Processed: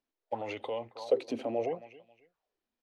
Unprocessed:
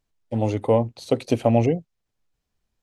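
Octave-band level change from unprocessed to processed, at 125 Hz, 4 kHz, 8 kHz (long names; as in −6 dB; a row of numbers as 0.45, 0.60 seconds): −28.5 dB, −8.0 dB, below −10 dB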